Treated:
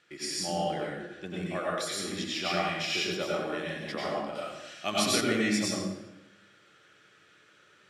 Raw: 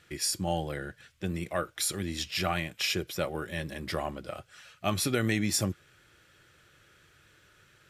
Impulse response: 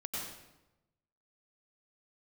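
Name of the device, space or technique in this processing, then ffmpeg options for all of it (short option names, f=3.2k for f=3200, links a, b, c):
supermarket ceiling speaker: -filter_complex "[0:a]highpass=230,lowpass=6.9k[a];[1:a]atrim=start_sample=2205[b];[a][b]afir=irnorm=-1:irlink=0,asettb=1/sr,asplit=3[c][d][e];[c]atrim=end=4.354[f];[d]atrim=start=4.35:end=5.21,asetpts=PTS-STARTPTS,afade=t=in:d=0.004:c=qsin,afade=t=out:st=0.856:d=0.004:c=qsin,highshelf=f=2.6k:g=9[g];[e]atrim=start=5.206[h];[f][g]acrossfade=d=0.004:c1=hsin:c2=qsin[i];[i][h]acrossfade=d=0.004:c1=qsin:c2=hsin"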